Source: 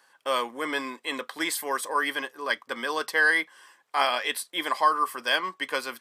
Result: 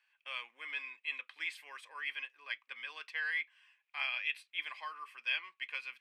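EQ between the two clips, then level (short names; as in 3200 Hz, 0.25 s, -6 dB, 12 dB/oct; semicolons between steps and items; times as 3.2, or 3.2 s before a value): band-pass 2500 Hz, Q 7.7; +1.0 dB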